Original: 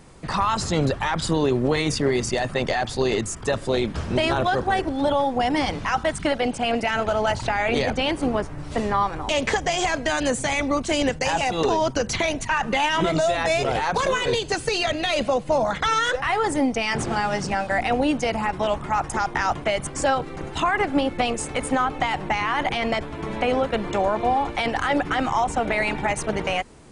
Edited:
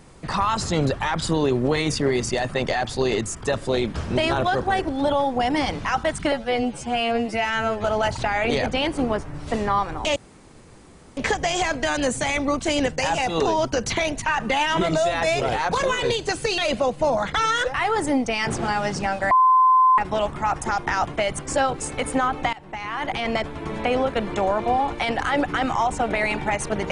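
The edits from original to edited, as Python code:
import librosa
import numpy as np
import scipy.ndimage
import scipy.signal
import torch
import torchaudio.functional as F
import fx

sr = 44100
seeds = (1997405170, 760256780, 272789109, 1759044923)

y = fx.edit(x, sr, fx.stretch_span(start_s=6.32, length_s=0.76, factor=2.0),
    fx.insert_room_tone(at_s=9.4, length_s=1.01),
    fx.cut(start_s=14.81, length_s=0.25),
    fx.bleep(start_s=17.79, length_s=0.67, hz=1030.0, db=-12.0),
    fx.cut(start_s=20.28, length_s=1.09),
    fx.fade_in_from(start_s=22.1, length_s=0.81, floor_db=-20.0), tone=tone)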